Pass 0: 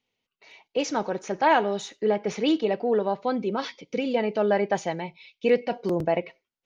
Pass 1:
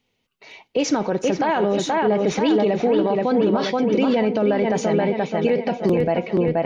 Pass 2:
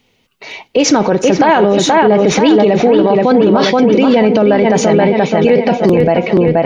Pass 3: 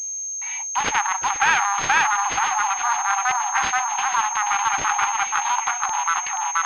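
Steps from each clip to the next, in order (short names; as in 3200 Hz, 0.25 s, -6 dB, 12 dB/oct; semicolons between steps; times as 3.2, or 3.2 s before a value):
on a send: dark delay 0.478 s, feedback 43%, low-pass 3400 Hz, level -4.5 dB; on the sum: limiter -21 dBFS, peak gain reduction 11.5 dB; low shelf 330 Hz +7 dB; gain +7.5 dB
maximiser +15 dB; gain -1 dB
self-modulated delay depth 0.34 ms; brick-wall FIR high-pass 740 Hz; pulse-width modulation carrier 6400 Hz; gain -3.5 dB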